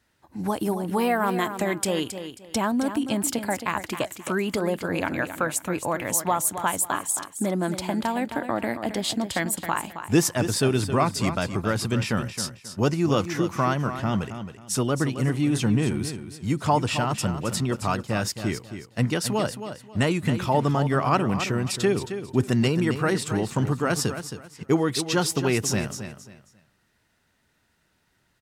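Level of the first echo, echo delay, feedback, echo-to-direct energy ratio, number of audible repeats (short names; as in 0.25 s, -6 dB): -10.0 dB, 0.269 s, 26%, -9.5 dB, 3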